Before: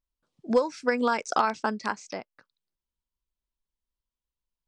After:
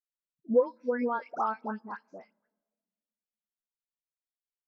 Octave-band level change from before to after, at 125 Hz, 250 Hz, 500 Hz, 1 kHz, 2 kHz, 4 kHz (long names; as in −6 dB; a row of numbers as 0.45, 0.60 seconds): can't be measured, −4.0 dB, −1.5 dB, −6.0 dB, −10.5 dB, below −20 dB